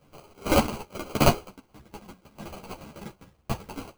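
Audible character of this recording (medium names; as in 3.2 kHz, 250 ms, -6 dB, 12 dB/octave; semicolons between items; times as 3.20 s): random-step tremolo 3.5 Hz; aliases and images of a low sample rate 1.8 kHz, jitter 0%; a shimmering, thickened sound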